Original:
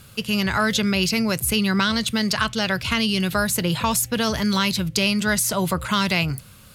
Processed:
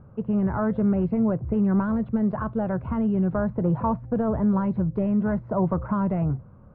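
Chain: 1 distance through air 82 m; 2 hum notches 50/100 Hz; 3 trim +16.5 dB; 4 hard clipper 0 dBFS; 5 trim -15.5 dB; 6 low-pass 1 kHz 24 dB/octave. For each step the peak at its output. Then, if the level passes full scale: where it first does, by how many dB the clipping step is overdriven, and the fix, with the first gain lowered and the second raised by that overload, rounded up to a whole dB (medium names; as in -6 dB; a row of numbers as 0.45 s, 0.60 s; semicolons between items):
-7.0 dBFS, -7.0 dBFS, +9.5 dBFS, 0.0 dBFS, -15.5 dBFS, -14.5 dBFS; step 3, 9.5 dB; step 3 +6.5 dB, step 5 -5.5 dB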